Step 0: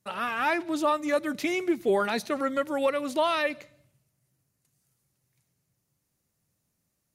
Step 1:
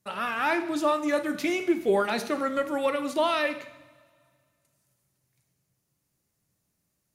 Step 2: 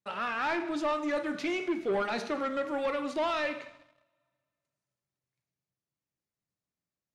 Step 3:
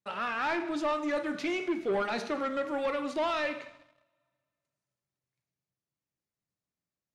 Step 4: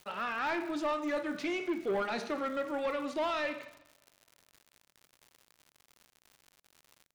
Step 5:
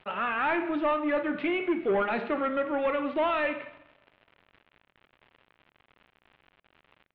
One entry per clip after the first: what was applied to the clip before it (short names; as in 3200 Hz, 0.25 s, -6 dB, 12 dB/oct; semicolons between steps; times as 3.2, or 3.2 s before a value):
two-slope reverb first 0.74 s, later 2.2 s, from -17 dB, DRR 8 dB
low shelf 210 Hz -6.5 dB; sample leveller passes 2; air absorption 88 m; gain -8.5 dB
nothing audible
crackle 130/s -42 dBFS; gain -2.5 dB
steep low-pass 3100 Hz 36 dB/oct; gain +6 dB